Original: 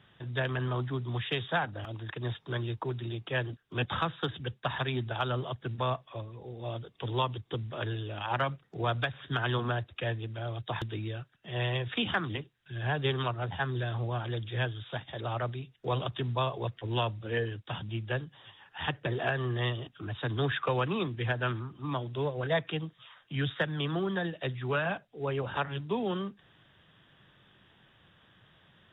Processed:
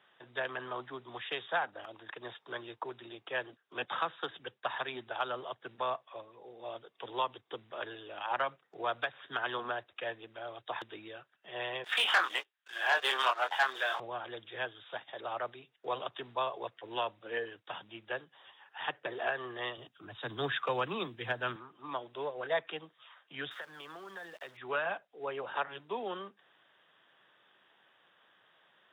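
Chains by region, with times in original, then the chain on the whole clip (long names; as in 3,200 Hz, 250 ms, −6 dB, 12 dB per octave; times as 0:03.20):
0:11.84–0:14.00: high-pass filter 880 Hz + double-tracking delay 23 ms −6 dB + leveller curve on the samples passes 3
0:19.77–0:21.56: bass and treble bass +12 dB, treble +11 dB + multiband upward and downward expander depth 40%
0:23.51–0:24.57: parametric band 1,500 Hz +6 dB 1.6 octaves + downward compressor, threshold −38 dBFS + centre clipping without the shift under −49.5 dBFS
whole clip: high-pass filter 540 Hz 12 dB per octave; high-shelf EQ 2,900 Hz −8.5 dB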